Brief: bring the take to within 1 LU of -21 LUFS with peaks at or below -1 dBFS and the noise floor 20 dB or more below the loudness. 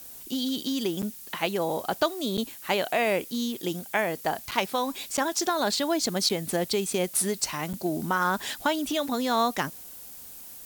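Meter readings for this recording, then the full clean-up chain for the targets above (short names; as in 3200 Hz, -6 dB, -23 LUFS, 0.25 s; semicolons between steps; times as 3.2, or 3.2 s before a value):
dropouts 6; longest dropout 7.3 ms; noise floor -44 dBFS; noise floor target -48 dBFS; loudness -27.5 LUFS; peak -10.0 dBFS; loudness target -21.0 LUFS
-> interpolate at 1.02/2.37/4.51/5.17/6.29/7.73, 7.3 ms; denoiser 6 dB, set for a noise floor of -44 dBFS; gain +6.5 dB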